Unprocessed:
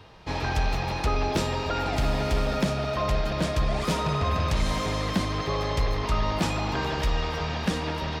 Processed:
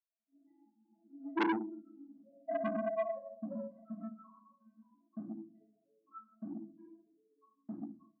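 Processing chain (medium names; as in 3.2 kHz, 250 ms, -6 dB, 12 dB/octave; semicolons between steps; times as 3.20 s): vocoder on a held chord major triad, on A3; peaking EQ 1.9 kHz +6 dB 1.2 oct; hum notches 60/120/180/240/300/360/420 Hz; loudest bins only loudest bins 1; gate -35 dBFS, range -36 dB; compression 6:1, threshold -35 dBFS, peak gain reduction 9.5 dB; band-pass sweep 430 Hz -> 1.3 kHz, 1.50–4.52 s; reverberation RT60 0.55 s, pre-delay 4 ms, DRR -7 dB; level rider gain up to 11.5 dB; peaking EQ 710 Hz -11.5 dB 0.52 oct; transformer saturation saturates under 1.6 kHz; trim +3 dB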